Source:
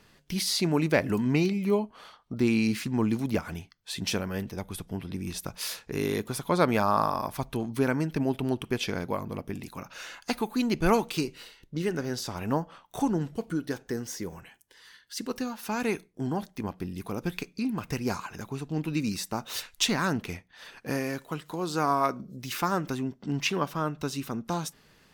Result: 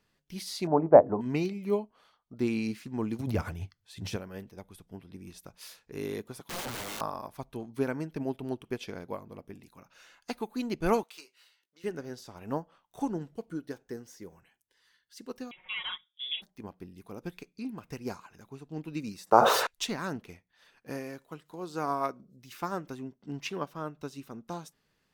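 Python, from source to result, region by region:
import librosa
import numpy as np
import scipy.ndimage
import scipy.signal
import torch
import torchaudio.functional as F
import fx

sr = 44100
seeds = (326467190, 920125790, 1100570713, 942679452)

y = fx.chain(x, sr, fx.lowpass(hz=1200.0, slope=24),
    fx.peak_eq(hz=740.0, db=12.5, octaves=1.1),
    fx.hum_notches(base_hz=60, count=8), at=(0.67, 1.21))
y = fx.chain(y, sr, fx.transient(attack_db=-1, sustain_db=10),
    fx.peak_eq(hz=97.0, db=13.0, octaves=0.69), at=(3.19, 4.16))
y = fx.chain(y, sr, fx.highpass(hz=150.0, slope=24),
    fx.leveller(passes=1),
    fx.overflow_wrap(gain_db=23.0), at=(6.4, 7.01))
y = fx.chain(y, sr, fx.highpass(hz=890.0, slope=12),
    fx.doubler(ms=18.0, db=-11.0), at=(11.03, 11.84))
y = fx.chain(y, sr, fx.freq_invert(carrier_hz=3600),
    fx.peak_eq(hz=2200.0, db=7.0, octaves=0.22),
    fx.comb(ms=5.5, depth=0.91), at=(15.51, 16.42))
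y = fx.chain(y, sr, fx.highpass(hz=83.0, slope=12),
    fx.band_shelf(hz=750.0, db=14.5, octaves=2.3),
    fx.sustainer(db_per_s=25.0), at=(19.25, 19.67))
y = fx.dynamic_eq(y, sr, hz=490.0, q=0.76, threshold_db=-40.0, ratio=4.0, max_db=4)
y = fx.upward_expand(y, sr, threshold_db=-36.0, expansion=1.5)
y = y * 10.0 ** (-1.5 / 20.0)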